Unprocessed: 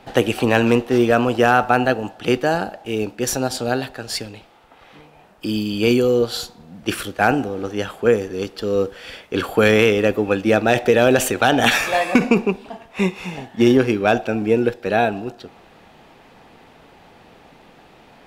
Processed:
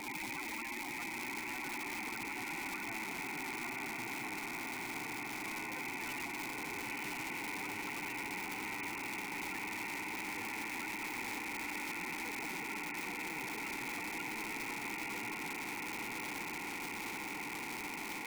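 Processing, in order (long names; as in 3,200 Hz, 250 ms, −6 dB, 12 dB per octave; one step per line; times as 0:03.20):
running median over 25 samples
full-wave rectification
tube saturation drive 30 dB, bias 0.55
formant filter u
in parallel at −1 dB: brickwall limiter −58 dBFS, peak gain reduction 10.5 dB
on the sum: flat-topped bell 1,900 Hz +14.5 dB 1 octave
spectral peaks only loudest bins 32
high-pass filter 150 Hz 24 dB per octave
on a send: feedback delay with all-pass diffusion 982 ms, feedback 71%, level −4.5 dB
on the sum: surface crackle 430 per second −71 dBFS
every bin compressed towards the loudest bin 4 to 1
level +15.5 dB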